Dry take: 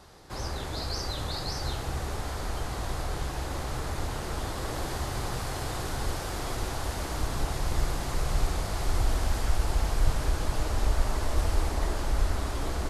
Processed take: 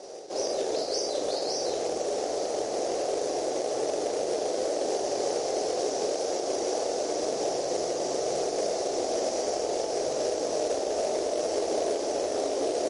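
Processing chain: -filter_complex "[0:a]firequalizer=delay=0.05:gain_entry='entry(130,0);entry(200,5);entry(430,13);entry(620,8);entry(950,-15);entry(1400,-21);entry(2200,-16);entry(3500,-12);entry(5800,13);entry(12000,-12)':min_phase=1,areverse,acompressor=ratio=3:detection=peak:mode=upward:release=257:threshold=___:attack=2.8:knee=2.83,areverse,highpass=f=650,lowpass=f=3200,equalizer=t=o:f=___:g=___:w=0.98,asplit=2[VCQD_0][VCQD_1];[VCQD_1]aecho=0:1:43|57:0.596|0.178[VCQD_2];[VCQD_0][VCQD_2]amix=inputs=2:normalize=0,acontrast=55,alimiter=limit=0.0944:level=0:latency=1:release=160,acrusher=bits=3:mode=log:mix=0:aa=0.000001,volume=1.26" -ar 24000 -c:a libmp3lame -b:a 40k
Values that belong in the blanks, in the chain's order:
0.0178, 1600, 2.5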